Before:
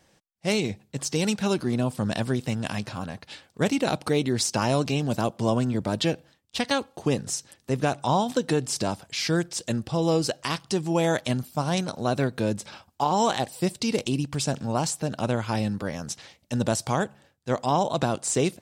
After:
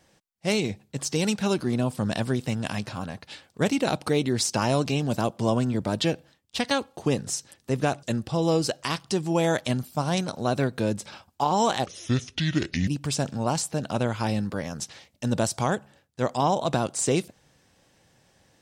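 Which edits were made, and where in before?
0:08.03–0:09.63: remove
0:13.46–0:14.16: play speed 69%

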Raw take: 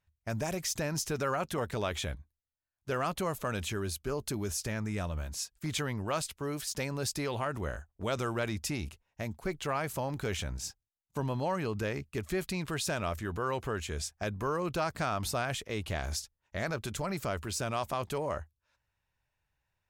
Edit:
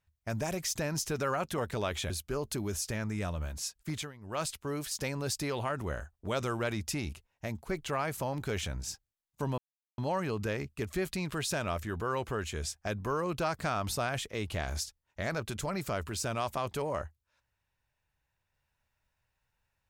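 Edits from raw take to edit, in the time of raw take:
0:02.10–0:03.86: remove
0:05.65–0:06.20: duck −17 dB, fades 0.24 s
0:11.34: splice in silence 0.40 s

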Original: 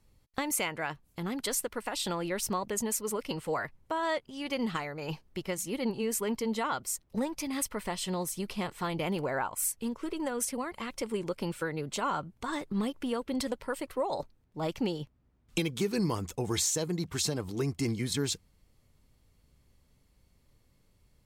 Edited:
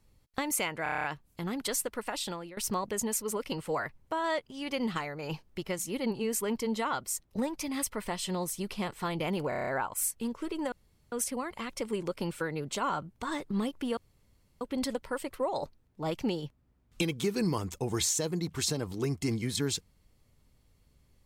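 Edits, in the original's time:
0:00.83: stutter 0.03 s, 8 plays
0:01.91–0:02.36: fade out, to −19 dB
0:09.28: stutter 0.03 s, 7 plays
0:10.33: splice in room tone 0.40 s
0:13.18: splice in room tone 0.64 s

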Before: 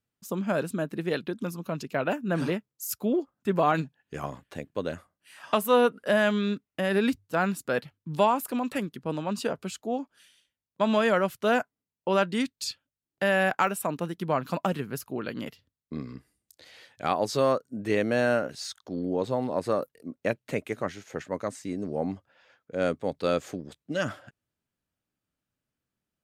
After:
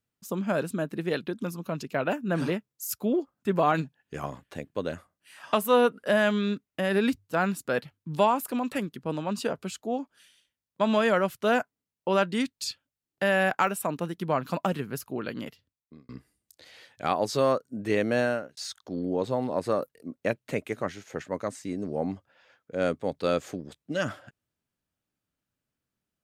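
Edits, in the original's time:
0:15.33–0:16.09: fade out
0:18.19–0:18.57: fade out

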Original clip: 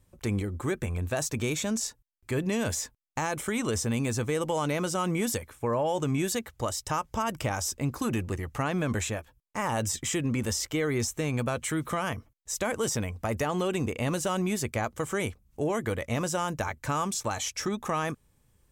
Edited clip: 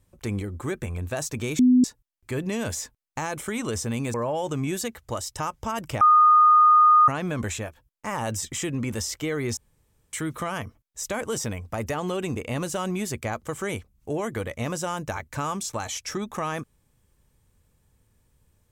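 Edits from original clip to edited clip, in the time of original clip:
0:01.59–0:01.84: beep over 251 Hz −13 dBFS
0:04.14–0:05.65: remove
0:07.52–0:08.59: beep over 1,230 Hz −12 dBFS
0:11.08–0:11.64: fill with room tone

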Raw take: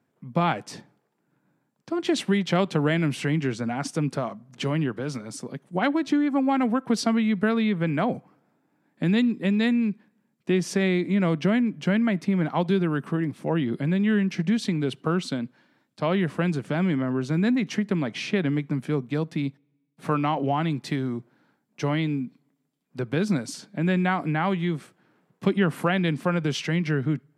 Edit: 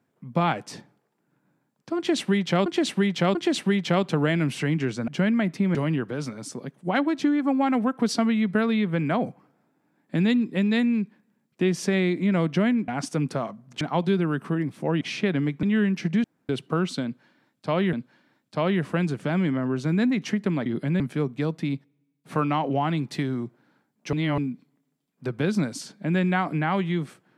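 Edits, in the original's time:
0:01.97–0:02.66: repeat, 3 plays
0:03.70–0:04.63: swap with 0:11.76–0:12.43
0:13.63–0:13.97: swap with 0:18.11–0:18.73
0:14.58–0:14.83: fill with room tone
0:15.38–0:16.27: repeat, 2 plays
0:21.86–0:22.11: reverse

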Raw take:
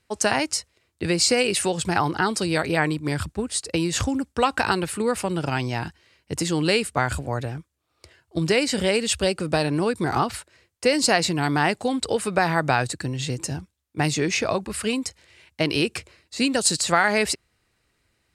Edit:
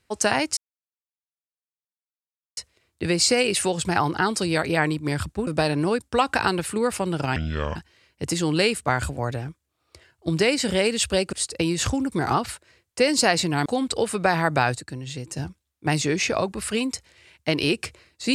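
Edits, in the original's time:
0:00.57: splice in silence 2.00 s
0:03.47–0:04.26: swap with 0:09.42–0:09.97
0:05.60–0:05.85: play speed 63%
0:11.51–0:11.78: remove
0:12.89–0:13.49: clip gain −6 dB

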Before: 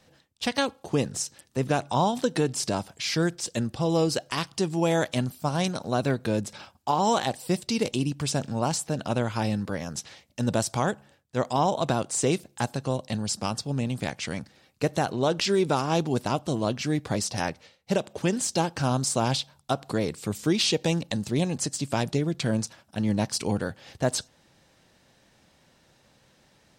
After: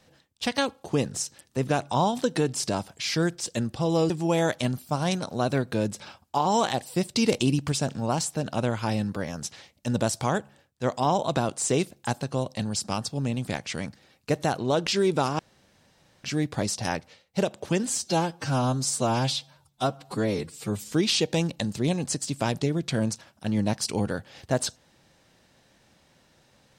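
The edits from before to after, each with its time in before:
0:04.10–0:04.63: remove
0:07.69–0:08.25: clip gain +3.5 dB
0:15.92–0:16.77: fill with room tone
0:18.40–0:20.43: time-stretch 1.5×

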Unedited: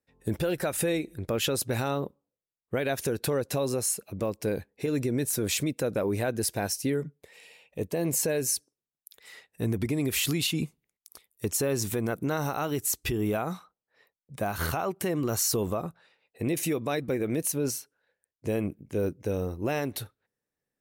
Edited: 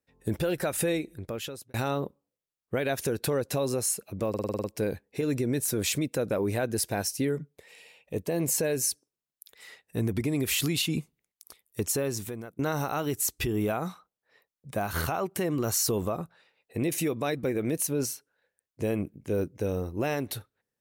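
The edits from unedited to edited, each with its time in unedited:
0:00.91–0:01.74: fade out
0:04.29: stutter 0.05 s, 8 plays
0:11.54–0:12.24: fade out, to −24 dB

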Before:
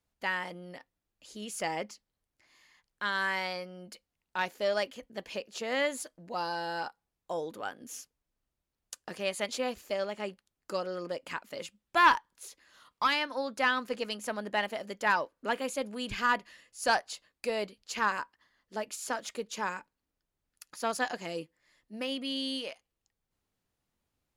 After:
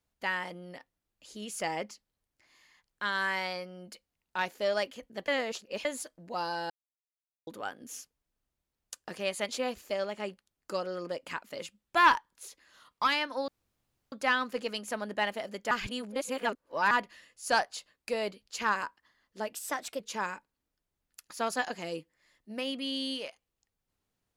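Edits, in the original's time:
0:05.28–0:05.85: reverse
0:06.70–0:07.47: silence
0:13.48: splice in room tone 0.64 s
0:15.07–0:16.27: reverse
0:18.89–0:19.43: play speed 115%

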